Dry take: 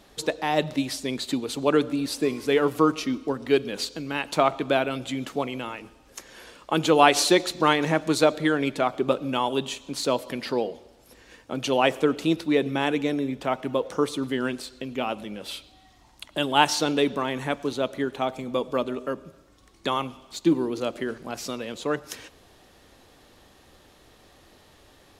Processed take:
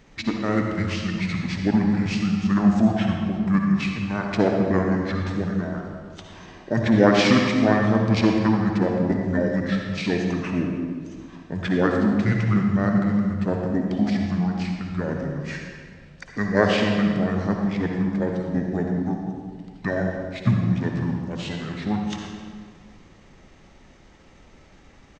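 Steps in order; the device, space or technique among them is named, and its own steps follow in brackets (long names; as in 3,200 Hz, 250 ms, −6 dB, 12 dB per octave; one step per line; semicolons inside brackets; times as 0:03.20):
monster voice (pitch shifter −6 semitones; formants moved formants −4.5 semitones; low-shelf EQ 100 Hz +5 dB; convolution reverb RT60 1.8 s, pre-delay 51 ms, DRR 1.5 dB)
0:11.87–0:12.52: Chebyshev low-pass filter 9,100 Hz, order 10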